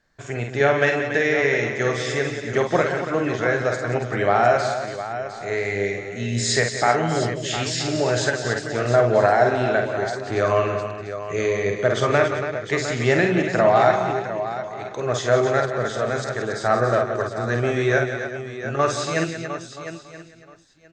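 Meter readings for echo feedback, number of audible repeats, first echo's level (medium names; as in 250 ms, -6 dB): no regular repeats, 11, -5.5 dB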